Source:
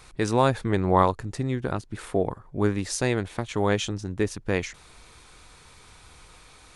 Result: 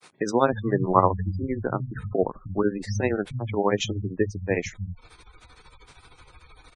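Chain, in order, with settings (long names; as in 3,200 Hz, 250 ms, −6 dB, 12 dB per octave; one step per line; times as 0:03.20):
granular cloud 111 ms, grains 13 per second, spray 23 ms, pitch spread up and down by 0 semitones
multiband delay without the direct sound highs, lows 310 ms, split 160 Hz
gate on every frequency bin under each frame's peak −20 dB strong
level +4 dB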